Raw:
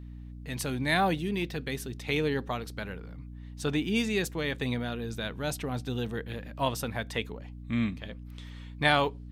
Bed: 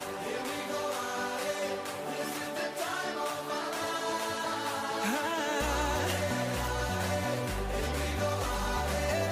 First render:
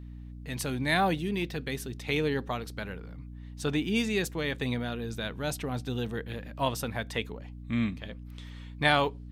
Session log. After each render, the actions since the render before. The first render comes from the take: nothing audible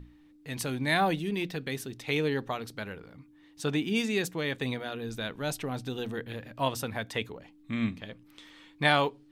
notches 60/120/180/240 Hz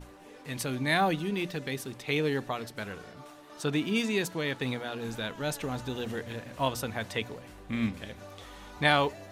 add bed -16.5 dB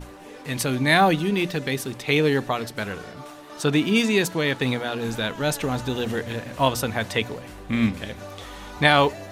gain +8.5 dB; limiter -3 dBFS, peak gain reduction 3 dB

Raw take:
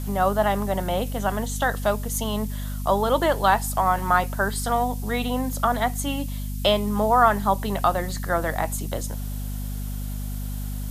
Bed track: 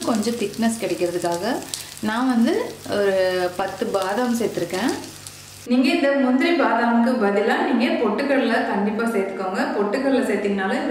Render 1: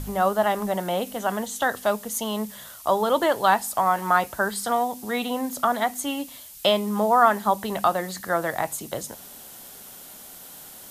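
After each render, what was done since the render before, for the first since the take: de-hum 50 Hz, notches 5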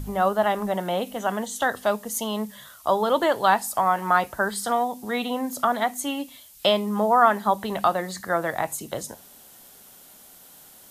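noise print and reduce 6 dB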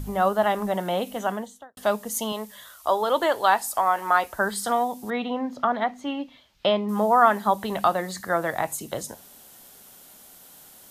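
1.18–1.77 studio fade out; 2.32–4.39 bell 160 Hz -14 dB 1.1 oct; 5.1–6.89 air absorption 240 m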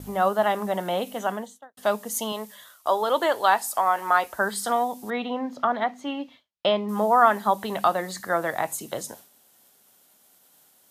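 expander -41 dBFS; HPF 170 Hz 6 dB/oct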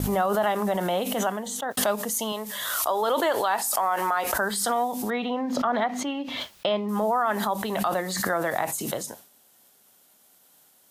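limiter -15 dBFS, peak gain reduction 9.5 dB; backwards sustainer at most 31 dB/s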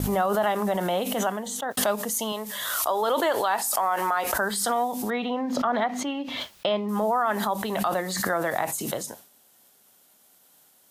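nothing audible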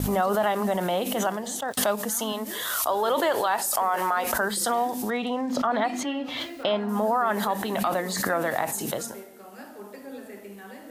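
add bed track -21 dB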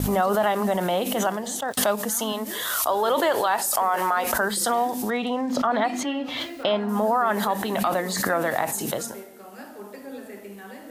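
gain +2 dB

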